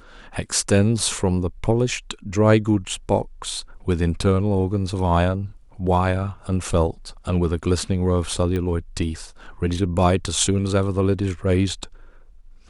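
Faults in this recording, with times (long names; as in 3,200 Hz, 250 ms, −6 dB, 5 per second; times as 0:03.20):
0:08.56: click −15 dBFS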